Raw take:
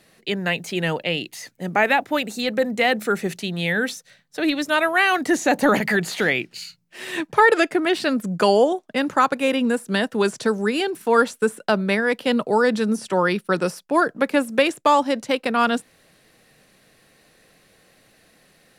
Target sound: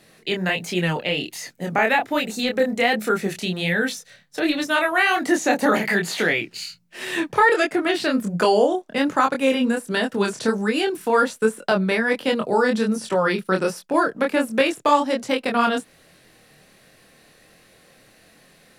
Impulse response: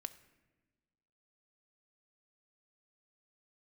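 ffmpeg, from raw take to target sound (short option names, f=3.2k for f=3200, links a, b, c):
-filter_complex "[0:a]asettb=1/sr,asplit=3[a][b][c];[a]atrim=end=4.644[d];[b]atrim=start=4.64:end=6.3,asetpts=PTS-STARTPTS,afade=t=in:d=0.004:c=qsin,afade=t=out:st=1.656:d=0.004:c=qsin,highpass=170[e];[c]atrim=start=6.296[f];[d][e]acrossfade=d=0.004:c1=hsin:c2=qsin[g];[g][f]acrossfade=d=0.004:c1=qsin:c2=hsin,asplit=2[h][i];[i]acompressor=threshold=-25dB:ratio=6,volume=0dB[j];[h][j]amix=inputs=2:normalize=0,flanger=delay=22.5:depth=5.1:speed=1.3"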